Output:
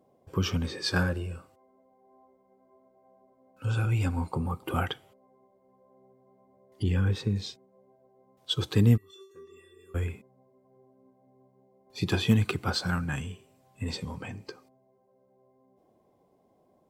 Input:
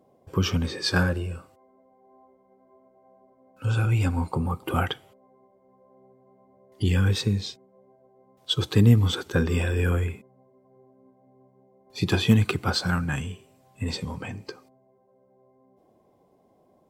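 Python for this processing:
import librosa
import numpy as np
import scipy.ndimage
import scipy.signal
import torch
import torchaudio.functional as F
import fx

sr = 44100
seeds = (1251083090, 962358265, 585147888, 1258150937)

y = fx.high_shelf(x, sr, hz=3000.0, db=-11.0, at=(6.83, 7.36))
y = fx.comb_fb(y, sr, f0_hz=390.0, decay_s=0.39, harmonics='odd', damping=0.0, mix_pct=100, at=(8.96, 9.94), fade=0.02)
y = F.gain(torch.from_numpy(y), -4.0).numpy()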